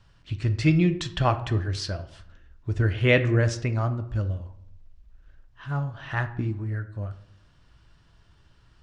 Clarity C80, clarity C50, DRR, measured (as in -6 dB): 16.5 dB, 13.5 dB, 8.5 dB